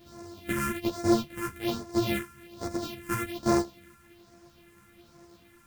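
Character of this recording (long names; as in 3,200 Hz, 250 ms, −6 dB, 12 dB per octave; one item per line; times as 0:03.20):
a buzz of ramps at a fixed pitch in blocks of 128 samples
phaser sweep stages 4, 1.2 Hz, lowest notch 630–3,000 Hz
a quantiser's noise floor 10 bits, dither none
a shimmering, thickened sound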